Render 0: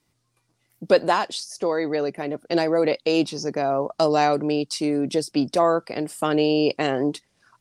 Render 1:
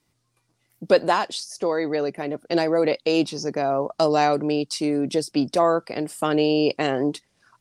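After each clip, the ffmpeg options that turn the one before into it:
ffmpeg -i in.wav -af anull out.wav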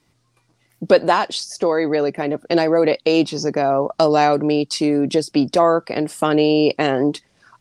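ffmpeg -i in.wav -filter_complex "[0:a]highshelf=frequency=8700:gain=-9.5,asplit=2[link_01][link_02];[link_02]acompressor=threshold=-27dB:ratio=6,volume=-1dB[link_03];[link_01][link_03]amix=inputs=2:normalize=0,volume=2.5dB" out.wav

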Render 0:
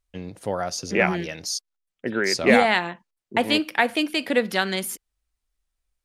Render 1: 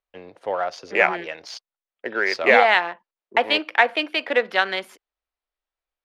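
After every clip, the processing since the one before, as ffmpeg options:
ffmpeg -i in.wav -filter_complex "[0:a]asplit=2[link_01][link_02];[link_02]adynamicsmooth=sensitivity=4:basefreq=1300,volume=0.5dB[link_03];[link_01][link_03]amix=inputs=2:normalize=0,acrossover=split=430 4300:gain=0.0708 1 0.0794[link_04][link_05][link_06];[link_04][link_05][link_06]amix=inputs=3:normalize=0,volume=-1.5dB" out.wav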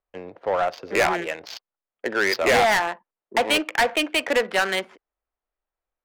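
ffmpeg -i in.wav -af "adynamicsmooth=sensitivity=5.5:basefreq=1900,asoftclip=type=tanh:threshold=-19dB,volume=4.5dB" out.wav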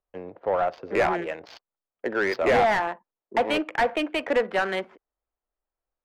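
ffmpeg -i in.wav -af "lowpass=frequency=1200:poles=1" out.wav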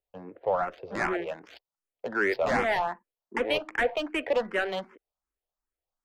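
ffmpeg -i in.wav -filter_complex "[0:a]asplit=2[link_01][link_02];[link_02]afreqshift=2.6[link_03];[link_01][link_03]amix=inputs=2:normalize=1" out.wav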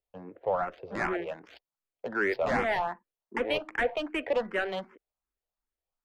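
ffmpeg -i in.wav -af "bass=frequency=250:gain=2,treble=frequency=4000:gain=-4,volume=-2dB" out.wav

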